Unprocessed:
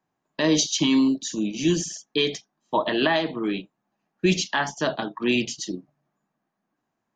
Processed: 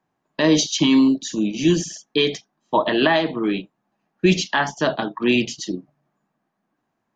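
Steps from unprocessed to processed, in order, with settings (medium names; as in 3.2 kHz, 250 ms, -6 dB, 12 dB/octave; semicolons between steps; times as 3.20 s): treble shelf 7.3 kHz -10.5 dB; trim +4.5 dB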